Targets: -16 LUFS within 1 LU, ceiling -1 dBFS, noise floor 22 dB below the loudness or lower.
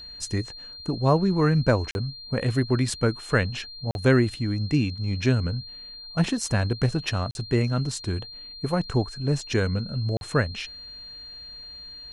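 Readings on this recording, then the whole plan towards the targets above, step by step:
dropouts 4; longest dropout 41 ms; steady tone 4.2 kHz; tone level -39 dBFS; loudness -25.5 LUFS; peak level -8.0 dBFS; loudness target -16.0 LUFS
-> interpolate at 1.91/3.91/7.31/10.17 s, 41 ms; band-stop 4.2 kHz, Q 30; trim +9.5 dB; peak limiter -1 dBFS

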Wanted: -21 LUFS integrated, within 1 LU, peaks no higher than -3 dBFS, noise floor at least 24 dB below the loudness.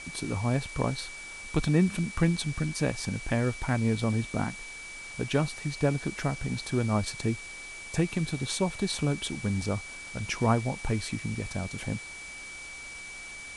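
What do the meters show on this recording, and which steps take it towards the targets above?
steady tone 2.3 kHz; tone level -41 dBFS; noise floor -43 dBFS; noise floor target -55 dBFS; loudness -30.5 LUFS; peak level -10.5 dBFS; loudness target -21.0 LUFS
-> band-stop 2.3 kHz, Q 30; noise print and reduce 12 dB; trim +9.5 dB; peak limiter -3 dBFS

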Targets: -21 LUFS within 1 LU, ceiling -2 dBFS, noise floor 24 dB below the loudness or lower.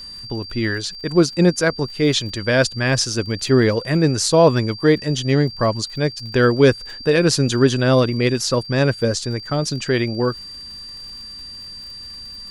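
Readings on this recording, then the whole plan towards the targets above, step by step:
tick rate 57 per s; steady tone 4.7 kHz; tone level -33 dBFS; loudness -18.5 LUFS; peak level -2.5 dBFS; loudness target -21.0 LUFS
-> de-click; band-stop 4.7 kHz, Q 30; trim -2.5 dB

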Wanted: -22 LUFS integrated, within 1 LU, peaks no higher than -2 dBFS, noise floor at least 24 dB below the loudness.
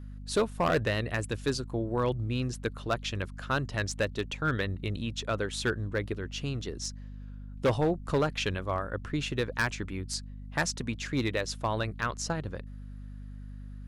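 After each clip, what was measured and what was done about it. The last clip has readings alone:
clipped samples 0.7%; clipping level -20.0 dBFS; hum 50 Hz; highest harmonic 250 Hz; hum level -40 dBFS; loudness -31.5 LUFS; peak level -20.0 dBFS; loudness target -22.0 LUFS
-> clip repair -20 dBFS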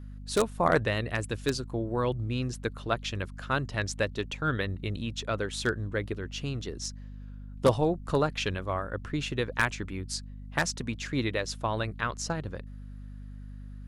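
clipped samples 0.0%; hum 50 Hz; highest harmonic 250 Hz; hum level -39 dBFS
-> hum notches 50/100/150/200/250 Hz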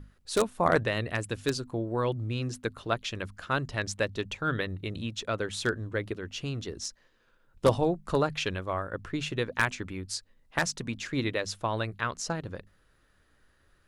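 hum not found; loudness -31.0 LUFS; peak level -10.0 dBFS; loudness target -22.0 LUFS
-> trim +9 dB; peak limiter -2 dBFS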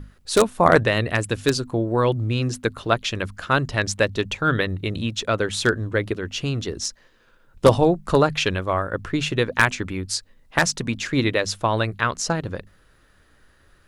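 loudness -22.5 LUFS; peak level -2.0 dBFS; noise floor -57 dBFS

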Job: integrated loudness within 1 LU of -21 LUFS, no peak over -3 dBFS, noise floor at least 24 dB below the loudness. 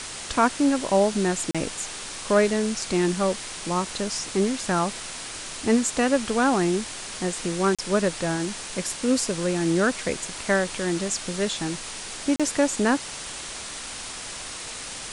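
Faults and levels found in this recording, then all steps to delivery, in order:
dropouts 3; longest dropout 36 ms; noise floor -36 dBFS; noise floor target -49 dBFS; loudness -25.0 LUFS; peak level -7.5 dBFS; loudness target -21.0 LUFS
-> interpolate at 1.51/7.75/12.36 s, 36 ms; noise print and reduce 13 dB; trim +4 dB

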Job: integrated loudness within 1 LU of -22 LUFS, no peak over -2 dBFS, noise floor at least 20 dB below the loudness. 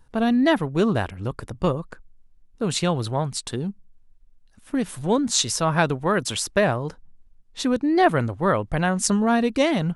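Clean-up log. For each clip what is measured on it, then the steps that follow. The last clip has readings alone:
loudness -23.0 LUFS; peak level -4.0 dBFS; loudness target -22.0 LUFS
-> trim +1 dB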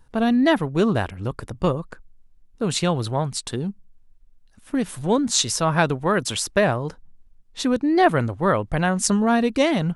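loudness -22.0 LUFS; peak level -3.0 dBFS; noise floor -53 dBFS

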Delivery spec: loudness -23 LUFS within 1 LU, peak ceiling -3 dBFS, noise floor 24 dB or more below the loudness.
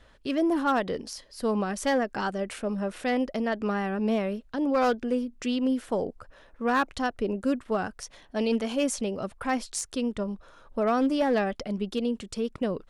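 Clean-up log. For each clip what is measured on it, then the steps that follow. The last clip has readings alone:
clipped samples 0.5%; clipping level -18.0 dBFS; loudness -28.5 LUFS; peak level -18.0 dBFS; loudness target -23.0 LUFS
-> clip repair -18 dBFS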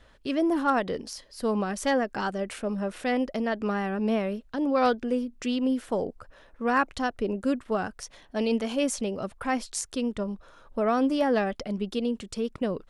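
clipped samples 0.0%; loudness -28.5 LUFS; peak level -11.5 dBFS; loudness target -23.0 LUFS
-> trim +5.5 dB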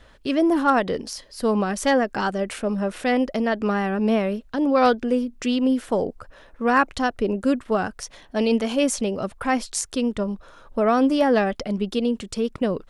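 loudness -23.0 LUFS; peak level -6.0 dBFS; noise floor -51 dBFS

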